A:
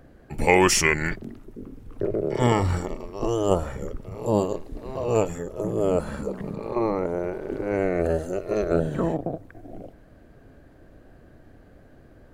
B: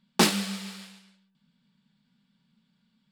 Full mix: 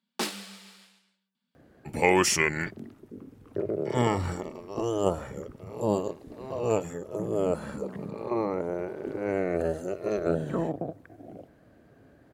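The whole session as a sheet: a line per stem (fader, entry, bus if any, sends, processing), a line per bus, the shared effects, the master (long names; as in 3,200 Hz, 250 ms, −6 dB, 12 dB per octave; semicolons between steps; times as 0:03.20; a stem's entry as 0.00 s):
−4.0 dB, 1.55 s, no send, high-pass filter 100 Hz 12 dB per octave
−9.0 dB, 0.00 s, no send, high-pass filter 230 Hz 24 dB per octave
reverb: not used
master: no processing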